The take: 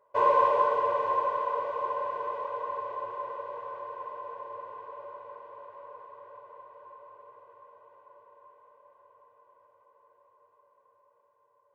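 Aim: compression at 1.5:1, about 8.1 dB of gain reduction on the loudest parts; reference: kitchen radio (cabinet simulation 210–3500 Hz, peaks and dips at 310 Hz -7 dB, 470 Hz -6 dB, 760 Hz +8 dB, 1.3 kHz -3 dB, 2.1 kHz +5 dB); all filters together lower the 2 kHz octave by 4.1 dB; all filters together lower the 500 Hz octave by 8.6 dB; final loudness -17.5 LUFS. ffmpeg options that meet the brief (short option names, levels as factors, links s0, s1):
-af "equalizer=f=500:t=o:g=-8,equalizer=f=2000:t=o:g=-6,acompressor=threshold=0.00562:ratio=1.5,highpass=210,equalizer=f=310:t=q:w=4:g=-7,equalizer=f=470:t=q:w=4:g=-6,equalizer=f=760:t=q:w=4:g=8,equalizer=f=1300:t=q:w=4:g=-3,equalizer=f=2100:t=q:w=4:g=5,lowpass=f=3500:w=0.5412,lowpass=f=3500:w=1.3066,volume=14.1"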